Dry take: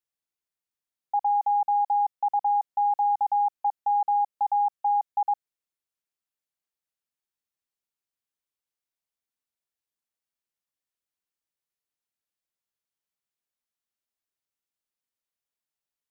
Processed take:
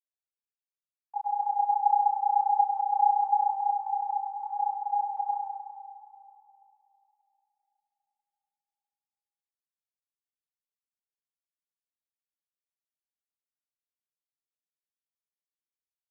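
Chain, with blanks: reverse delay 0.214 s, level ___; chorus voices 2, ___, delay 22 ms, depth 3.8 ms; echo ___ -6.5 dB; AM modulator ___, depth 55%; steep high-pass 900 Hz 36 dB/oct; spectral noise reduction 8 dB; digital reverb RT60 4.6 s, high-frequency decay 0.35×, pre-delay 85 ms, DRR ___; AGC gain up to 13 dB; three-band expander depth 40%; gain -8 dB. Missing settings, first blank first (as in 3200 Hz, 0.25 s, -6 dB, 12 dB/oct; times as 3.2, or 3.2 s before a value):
-7 dB, 0.83 Hz, 0.105 s, 30 Hz, 5 dB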